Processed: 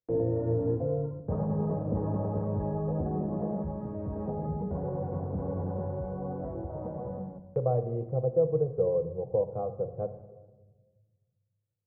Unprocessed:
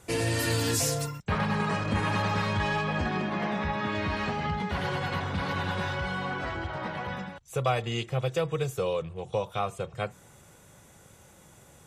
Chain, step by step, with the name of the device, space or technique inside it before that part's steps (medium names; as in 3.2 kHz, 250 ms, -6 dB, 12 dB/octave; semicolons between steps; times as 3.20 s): under water (low-pass 690 Hz 24 dB/octave; peaking EQ 500 Hz +7 dB 0.33 oct); gate -46 dBFS, range -42 dB; 3.62–4.16 s: peaking EQ 430 Hz -5.5 dB 2.7 oct; simulated room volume 1100 m³, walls mixed, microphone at 0.53 m; trim -2 dB